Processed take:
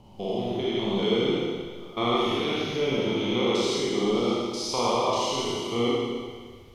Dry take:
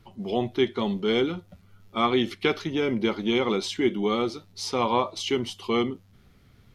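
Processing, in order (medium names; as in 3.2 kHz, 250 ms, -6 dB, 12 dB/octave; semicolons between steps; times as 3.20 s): spectrogram pixelated in time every 200 ms; fifteen-band graphic EQ 250 Hz -8 dB, 1.6 kHz -9 dB, 6.3 kHz +3 dB; Schroeder reverb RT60 1.7 s, combs from 26 ms, DRR -4.5 dB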